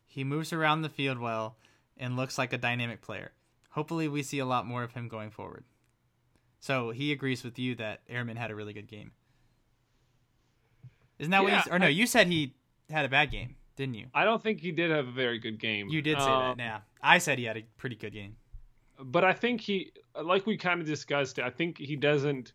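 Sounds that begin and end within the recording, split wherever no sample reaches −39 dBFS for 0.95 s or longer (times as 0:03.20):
0:06.64–0:09.08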